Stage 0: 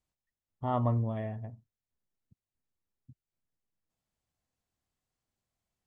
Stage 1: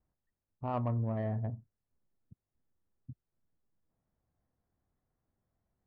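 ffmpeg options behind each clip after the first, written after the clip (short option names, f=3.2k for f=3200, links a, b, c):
-af "areverse,acompressor=threshold=-39dB:ratio=5,areverse,lowpass=f=1.9k:t=q:w=1.8,adynamicsmooth=sensitivity=2.5:basefreq=900,volume=8dB"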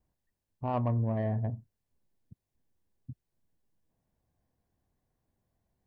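-af "bandreject=f=1.3k:w=5.8,volume=3.5dB"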